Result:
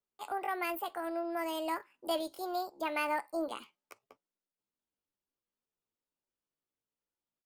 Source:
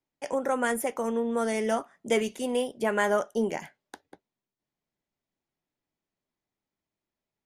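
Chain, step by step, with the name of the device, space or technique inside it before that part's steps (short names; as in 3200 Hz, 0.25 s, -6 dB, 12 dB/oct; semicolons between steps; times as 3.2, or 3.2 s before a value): chipmunk voice (pitch shift +6.5 st); gain -8 dB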